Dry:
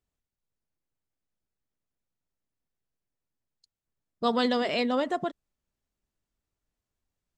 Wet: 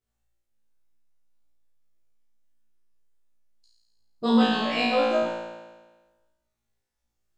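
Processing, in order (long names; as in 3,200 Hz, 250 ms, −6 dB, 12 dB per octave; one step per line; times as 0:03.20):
pitch shifter gated in a rhythm −2 semitones, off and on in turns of 294 ms
multi-voice chorus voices 6, 1 Hz, delay 11 ms, depth 3 ms
flutter between parallel walls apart 3 metres, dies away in 1.3 s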